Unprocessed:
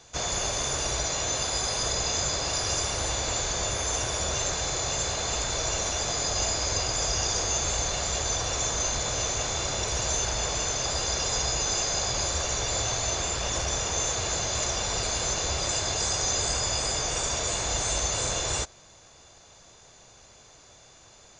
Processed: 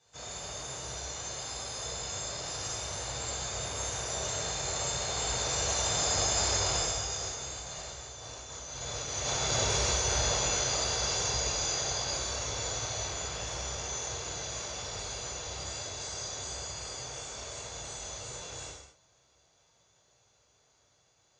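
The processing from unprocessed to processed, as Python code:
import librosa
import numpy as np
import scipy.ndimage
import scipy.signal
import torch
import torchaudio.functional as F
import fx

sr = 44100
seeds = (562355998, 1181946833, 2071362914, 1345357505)

y = fx.doppler_pass(x, sr, speed_mps=9, closest_m=5.6, pass_at_s=8.17)
y = scipy.signal.sosfilt(scipy.signal.butter(2, 56.0, 'highpass', fs=sr, output='sos'), y)
y = fx.over_compress(y, sr, threshold_db=-38.0, ratio=-0.5)
y = fx.rev_gated(y, sr, seeds[0], gate_ms=280, shape='falling', drr_db=-6.5)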